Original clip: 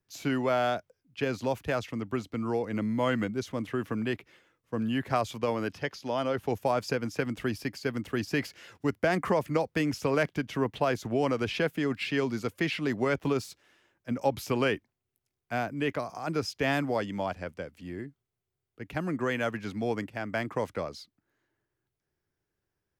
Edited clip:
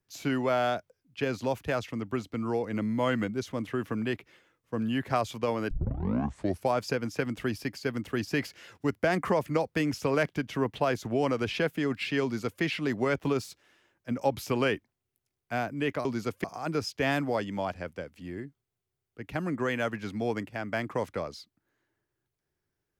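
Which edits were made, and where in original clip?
5.71 tape start 0.99 s
12.23–12.62 copy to 16.05

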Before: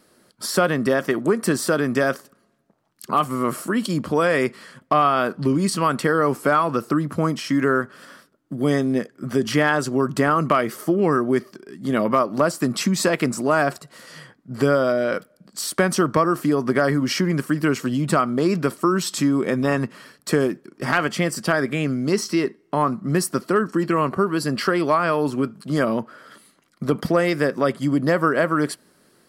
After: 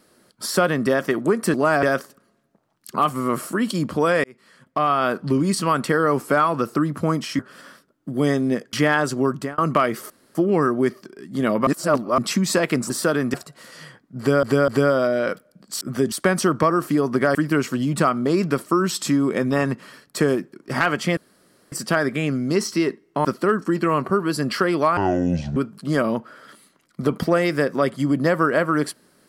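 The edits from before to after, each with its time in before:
1.54–1.98 swap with 13.4–13.69
4.39–5.23 fade in
7.54–7.83 cut
9.17–9.48 move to 15.66
10.02–10.33 fade out linear
10.85 insert room tone 0.25 s
12.17–12.68 reverse
14.53–14.78 loop, 3 plays
16.89–17.47 cut
21.29 insert room tone 0.55 s
22.82–23.32 cut
25.04–25.39 speed 59%

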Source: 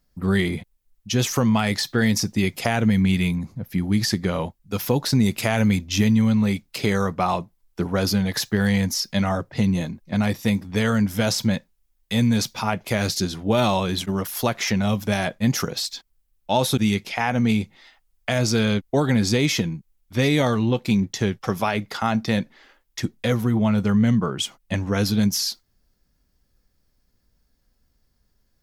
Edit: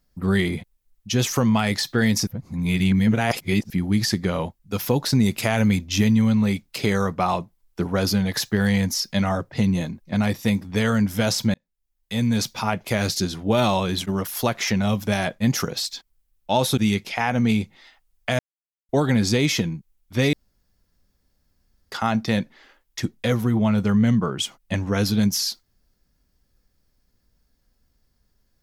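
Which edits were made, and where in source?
2.27–3.7 reverse
11.54–12.48 fade in
18.39–18.89 mute
20.33–21.92 room tone

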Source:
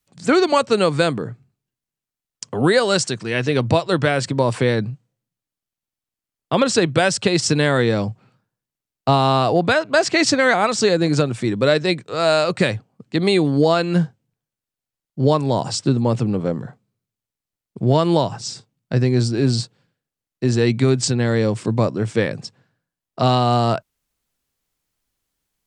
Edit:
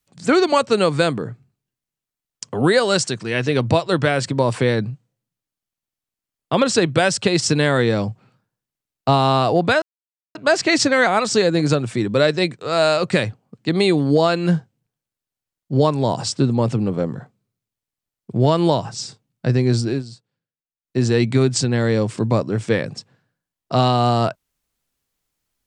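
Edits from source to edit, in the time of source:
9.82 insert silence 0.53 s
19.36–20.44 dip -17 dB, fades 0.14 s

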